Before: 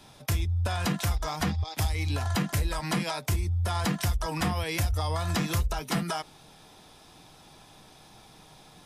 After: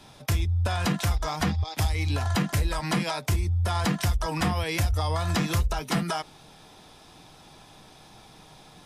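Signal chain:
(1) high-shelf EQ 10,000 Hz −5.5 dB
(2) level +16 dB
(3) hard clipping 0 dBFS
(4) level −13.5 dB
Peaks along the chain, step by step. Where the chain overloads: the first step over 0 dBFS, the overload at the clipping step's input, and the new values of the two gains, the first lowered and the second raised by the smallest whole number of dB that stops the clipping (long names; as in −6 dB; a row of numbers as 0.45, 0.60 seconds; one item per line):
−18.0, −2.0, −2.0, −15.5 dBFS
no step passes full scale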